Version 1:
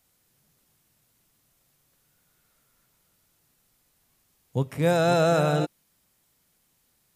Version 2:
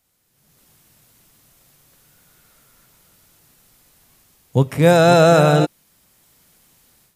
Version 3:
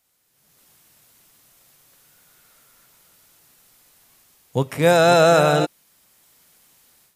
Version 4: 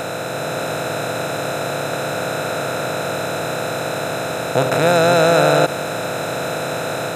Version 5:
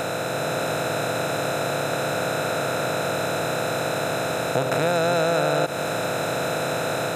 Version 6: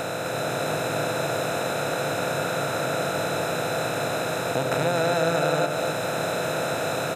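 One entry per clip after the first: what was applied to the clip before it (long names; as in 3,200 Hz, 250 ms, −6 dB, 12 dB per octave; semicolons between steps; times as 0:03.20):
automatic gain control gain up to 13 dB
low-shelf EQ 290 Hz −9.5 dB
compressor on every frequency bin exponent 0.2; level −3.5 dB
downward compressor 3 to 1, threshold −18 dBFS, peak gain reduction 7 dB; level −1.5 dB
single-tap delay 257 ms −5 dB; level −2.5 dB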